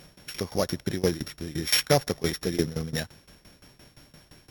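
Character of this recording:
a buzz of ramps at a fixed pitch in blocks of 8 samples
tremolo saw down 5.8 Hz, depth 90%
Opus

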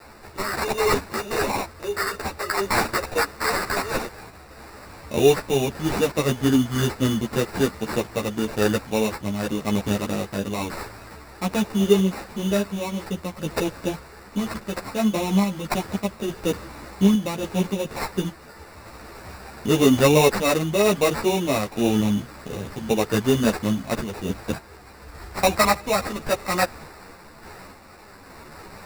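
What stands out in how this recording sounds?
a quantiser's noise floor 8 bits, dither triangular
sample-and-hold tremolo
aliases and images of a low sample rate 3,200 Hz, jitter 0%
a shimmering, thickened sound

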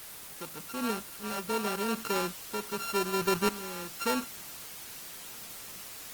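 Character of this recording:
a buzz of ramps at a fixed pitch in blocks of 32 samples
tremolo saw up 0.86 Hz, depth 85%
a quantiser's noise floor 8 bits, dither triangular
Opus

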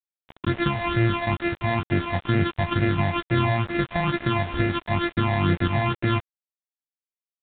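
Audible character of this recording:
a buzz of ramps at a fixed pitch in blocks of 128 samples
phaser sweep stages 8, 2.2 Hz, lowest notch 380–1,000 Hz
a quantiser's noise floor 6 bits, dither none
mu-law

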